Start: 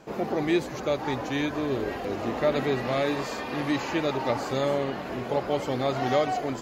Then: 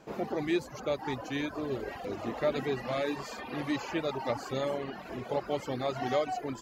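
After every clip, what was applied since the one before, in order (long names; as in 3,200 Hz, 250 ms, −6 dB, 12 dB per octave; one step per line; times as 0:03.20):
reverb reduction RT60 0.96 s
level −4.5 dB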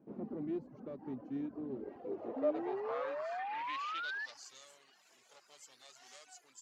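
tube saturation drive 29 dB, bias 0.65
band-pass filter sweep 240 Hz → 7,600 Hz, 0:01.69–0:04.64
sound drawn into the spectrogram rise, 0:02.36–0:04.26, 260–1,800 Hz −43 dBFS
level +3 dB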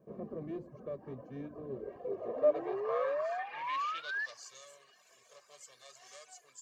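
convolution reverb RT60 0.45 s, pre-delay 4 ms, DRR 18 dB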